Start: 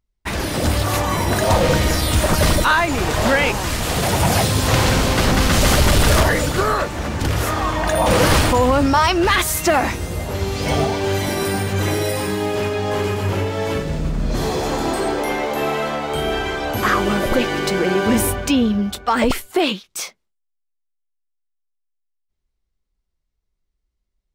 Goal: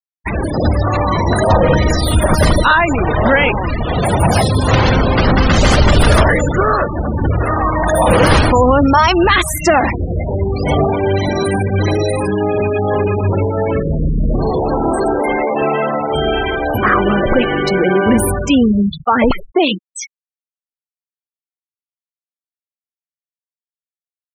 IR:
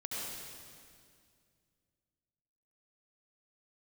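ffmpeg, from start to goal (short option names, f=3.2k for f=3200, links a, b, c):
-filter_complex "[0:a]asplit=5[a][b][c][d][e];[b]adelay=164,afreqshift=-42,volume=-22dB[f];[c]adelay=328,afreqshift=-84,volume=-27dB[g];[d]adelay=492,afreqshift=-126,volume=-32.1dB[h];[e]adelay=656,afreqshift=-168,volume=-37.1dB[i];[a][f][g][h][i]amix=inputs=5:normalize=0,anlmdn=39.8,asplit=2[j][k];[k]alimiter=limit=-18dB:level=0:latency=1:release=53,volume=-3dB[l];[j][l]amix=inputs=2:normalize=0,afftfilt=real='re*gte(hypot(re,im),0.158)':imag='im*gte(hypot(re,im),0.158)':win_size=1024:overlap=0.75,volume=3dB"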